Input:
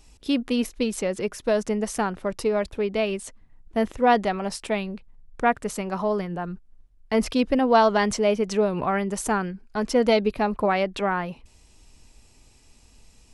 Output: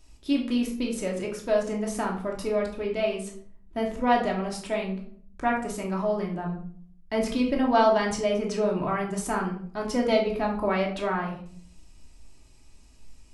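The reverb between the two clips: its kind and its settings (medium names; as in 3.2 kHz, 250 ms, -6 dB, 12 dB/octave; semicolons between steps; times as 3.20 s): simulated room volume 640 m³, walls furnished, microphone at 2.8 m; trim -7 dB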